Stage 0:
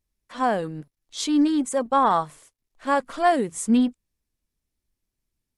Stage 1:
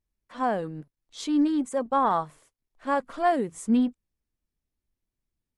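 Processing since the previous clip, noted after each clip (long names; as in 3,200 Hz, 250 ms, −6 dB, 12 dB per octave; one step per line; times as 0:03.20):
high-shelf EQ 2,600 Hz −7.5 dB
level −3 dB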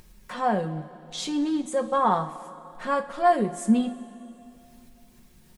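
comb filter 5.5 ms, depth 55%
upward compression, threshold −29 dBFS
coupled-rooms reverb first 0.29 s, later 2.9 s, from −17 dB, DRR 5.5 dB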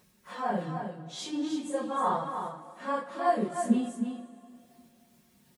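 random phases in long frames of 100 ms
high-pass filter 130 Hz 12 dB per octave
single-tap delay 310 ms −7 dB
level −6 dB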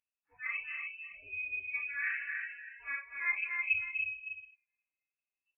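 noise reduction from a noise print of the clip's start 28 dB
voice inversion scrambler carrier 2,800 Hz
loudspeakers that aren't time-aligned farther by 85 metres −8 dB, 100 metres −8 dB
level −7.5 dB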